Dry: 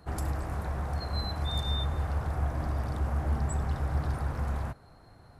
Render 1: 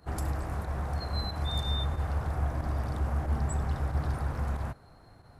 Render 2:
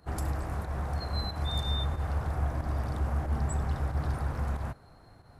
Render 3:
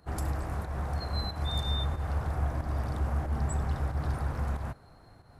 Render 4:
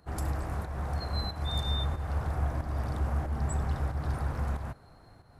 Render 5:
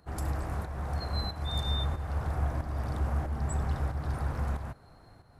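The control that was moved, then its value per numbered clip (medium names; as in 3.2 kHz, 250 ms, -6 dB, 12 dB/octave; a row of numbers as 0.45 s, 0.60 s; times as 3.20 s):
volume shaper, release: 61 ms, 110 ms, 170 ms, 289 ms, 428 ms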